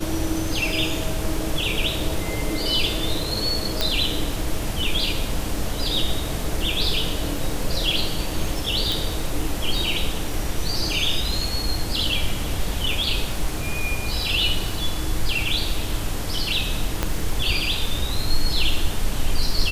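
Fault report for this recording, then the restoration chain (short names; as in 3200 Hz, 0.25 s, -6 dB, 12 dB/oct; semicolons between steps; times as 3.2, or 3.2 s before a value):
crackle 30/s -29 dBFS
3.81 pop -5 dBFS
8.92 pop
17.03 pop -7 dBFS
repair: de-click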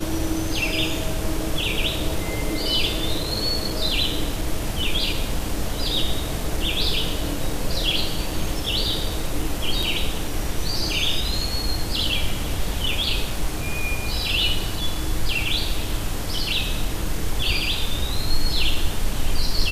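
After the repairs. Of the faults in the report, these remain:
17.03 pop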